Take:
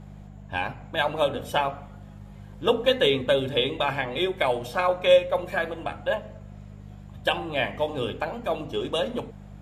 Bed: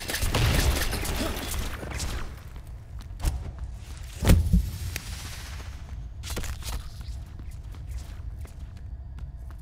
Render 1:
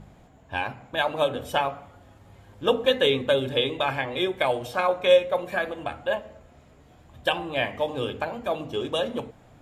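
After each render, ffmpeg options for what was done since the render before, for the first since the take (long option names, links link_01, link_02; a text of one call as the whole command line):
ffmpeg -i in.wav -af "bandreject=frequency=50:width_type=h:width=4,bandreject=frequency=100:width_type=h:width=4,bandreject=frequency=150:width_type=h:width=4,bandreject=frequency=200:width_type=h:width=4" out.wav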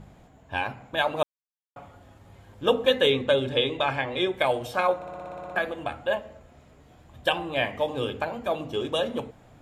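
ffmpeg -i in.wav -filter_complex "[0:a]asettb=1/sr,asplit=3[link_01][link_02][link_03];[link_01]atrim=end=3.124[link_04];[link_02]atrim=start=3.12:end=4.34,asetpts=PTS-STARTPTS,afade=type=in:duration=0.004:curve=qsin,afade=type=out:start_time=1.216:duration=0.004:curve=qsin,lowpass=8000[link_05];[link_03]atrim=start=4.336[link_06];[link_04][link_05]acrossfade=duration=0.004:curve1=hsin:curve2=qsin[link_07];[link_07][link_06]acrossfade=duration=0.004:curve1=qsin:curve2=hsin,asplit=13[link_08][link_09][link_10][link_11][link_12][link_13][link_14][link_15][link_16][link_17][link_18][link_19][link_20];[link_08]atrim=end=1.23,asetpts=PTS-STARTPTS,afade=type=out:start_time=1.226:duration=0.004:curve=hsin[link_21];[link_09]atrim=start=1.23:end=1.76,asetpts=PTS-STARTPTS,volume=0[link_22];[link_10]atrim=start=1.76:end=5.022,asetpts=PTS-STARTPTS,afade=type=in:duration=0.004:curve=hsin[link_23];[link_11]atrim=start=4.958:end=5.022[link_24];[link_12]atrim=start=4.958:end=5.022[link_25];[link_13]atrim=start=4.958:end=5.022[link_26];[link_14]atrim=start=4.958:end=5.022[link_27];[link_15]atrim=start=4.958:end=5.022[link_28];[link_16]atrim=start=4.958:end=5.022[link_29];[link_17]atrim=start=4.958:end=5.022[link_30];[link_18]atrim=start=4.958:end=5.022[link_31];[link_19]atrim=start=4.958:end=5.022[link_32];[link_20]atrim=start=5.558[link_33];[link_21][link_22][link_23]concat=n=3:v=0:a=1[link_34];[link_34][link_24]acrossfade=duration=0.004:curve1=hsin:curve2=hsin[link_35];[link_35][link_25]acrossfade=duration=0.004:curve1=hsin:curve2=hsin[link_36];[link_36][link_26]acrossfade=duration=0.004:curve1=hsin:curve2=hsin[link_37];[link_37][link_27]acrossfade=duration=0.004:curve1=hsin:curve2=hsin[link_38];[link_38][link_28]acrossfade=duration=0.004:curve1=hsin:curve2=hsin[link_39];[link_39][link_29]acrossfade=duration=0.004:curve1=hsin:curve2=hsin[link_40];[link_40][link_30]acrossfade=duration=0.004:curve1=hsin:curve2=hsin[link_41];[link_41][link_31]acrossfade=duration=0.004:curve1=hsin:curve2=hsin[link_42];[link_42][link_32]acrossfade=duration=0.004:curve1=hsin:curve2=hsin[link_43];[link_43][link_33]acrossfade=duration=0.004:curve1=hsin:curve2=hsin" out.wav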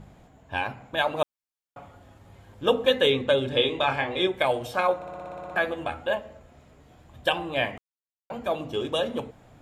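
ffmpeg -i in.wav -filter_complex "[0:a]asettb=1/sr,asplit=3[link_01][link_02][link_03];[link_01]atrim=end=3.504[link_04];[link_02]atrim=start=3.5:end=4.27,asetpts=PTS-STARTPTS,afade=type=in:duration=0.004:curve=qsin,afade=type=out:start_time=0.766:duration=0.004:curve=qsin,asplit=2[link_05][link_06];[link_06]adelay=27,volume=-5dB[link_07];[link_05][link_07]amix=inputs=2:normalize=0,atrim=end_sample=33957[link_08];[link_03]atrim=start=4.266[link_09];[link_04][link_08]acrossfade=duration=0.004:curve1=hsin:curve2=qsin[link_10];[link_10][link_09]acrossfade=duration=0.004:curve1=qsin:curve2=hsin,asettb=1/sr,asplit=3[link_11][link_12][link_13];[link_11]atrim=end=5.514[link_14];[link_12]atrim=start=5.51:end=6.11,asetpts=PTS-STARTPTS,afade=type=in:duration=0.004:curve=qsin,afade=type=out:start_time=0.596:duration=0.004:curve=qsin,asplit=2[link_15][link_16];[link_16]adelay=12,volume=-6dB[link_17];[link_15][link_17]amix=inputs=2:normalize=0,atrim=end_sample=26460[link_18];[link_13]atrim=start=6.106[link_19];[link_14][link_18]acrossfade=duration=0.004:curve1=hsin:curve2=qsin[link_20];[link_20][link_19]acrossfade=duration=0.004:curve1=qsin:curve2=hsin,asplit=3[link_21][link_22][link_23];[link_21]atrim=end=7.78,asetpts=PTS-STARTPTS,afade=type=out:start_time=7.776:duration=0.004:curve=hsin[link_24];[link_22]atrim=start=7.78:end=8.3,asetpts=PTS-STARTPTS,volume=0[link_25];[link_23]atrim=start=8.3,asetpts=PTS-STARTPTS,afade=type=in:duration=0.004:curve=hsin[link_26];[link_24][link_25][link_26]concat=n=3:v=0:a=1" out.wav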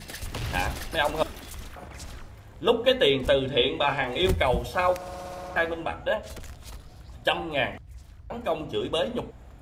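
ffmpeg -i in.wav -i bed.wav -filter_complex "[1:a]volume=-9dB[link_01];[0:a][link_01]amix=inputs=2:normalize=0" out.wav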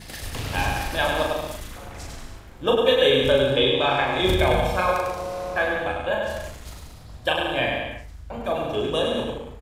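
ffmpeg -i in.wav -filter_complex "[0:a]asplit=2[link_01][link_02];[link_02]adelay=38,volume=-3.5dB[link_03];[link_01][link_03]amix=inputs=2:normalize=0,aecho=1:1:100|180|244|295.2|336.2:0.631|0.398|0.251|0.158|0.1" out.wav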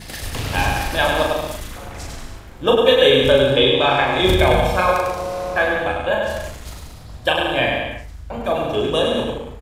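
ffmpeg -i in.wav -af "volume=5dB,alimiter=limit=-1dB:level=0:latency=1" out.wav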